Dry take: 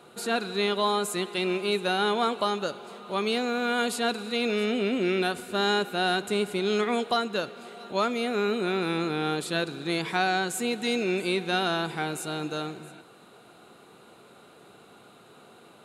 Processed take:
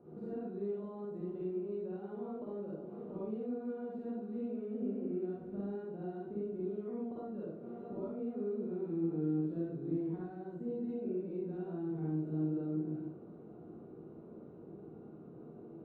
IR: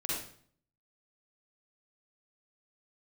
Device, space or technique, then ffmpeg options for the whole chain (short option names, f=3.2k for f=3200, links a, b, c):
television next door: -filter_complex "[0:a]acompressor=threshold=-39dB:ratio=6,lowpass=350[a];[1:a]atrim=start_sample=2205[b];[a][b]afir=irnorm=-1:irlink=0,asettb=1/sr,asplit=3[c][d][e];[c]atrim=end=10.124[f];[d]atrim=start=10.12:end=10.88,asetpts=PTS-STARTPTS,afade=t=in:d=0.004:c=qsin,afade=t=out:st=0.756:d=0.004:c=qsin,equalizer=f=2.4k:w=6.8:g=-7[g];[e]atrim=start=10.876[h];[f][g]acrossfade=d=0.004:c1=hsin:c2=qsin[i];[i][h]acrossfade=d=0.004:c1=qsin:c2=hsin,volume=1.5dB"